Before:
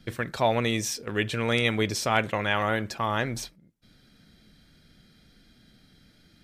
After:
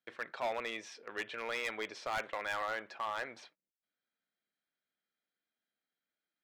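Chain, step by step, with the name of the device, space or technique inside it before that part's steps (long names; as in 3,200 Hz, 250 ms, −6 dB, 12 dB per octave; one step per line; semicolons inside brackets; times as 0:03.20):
walkie-talkie (band-pass filter 600–2,600 Hz; hard clipping −23.5 dBFS, distortion −9 dB; noise gate −55 dBFS, range −20 dB)
level −6.5 dB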